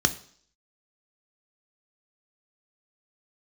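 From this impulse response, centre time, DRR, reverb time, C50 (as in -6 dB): 6 ms, 8.0 dB, 0.55 s, 16.5 dB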